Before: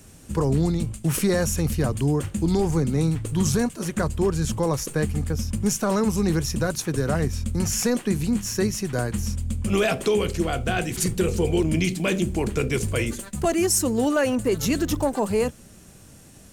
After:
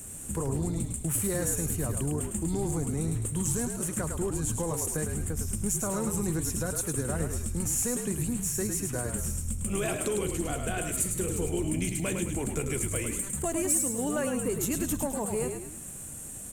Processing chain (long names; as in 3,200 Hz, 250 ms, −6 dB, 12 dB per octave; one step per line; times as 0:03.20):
high shelf with overshoot 6,500 Hz +8 dB, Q 3
downward compressor 2 to 1, threshold −35 dBFS, peak gain reduction 15.5 dB
soft clipping −18 dBFS, distortion −25 dB
on a send: echo with shifted repeats 105 ms, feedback 47%, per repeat −47 Hz, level −5.5 dB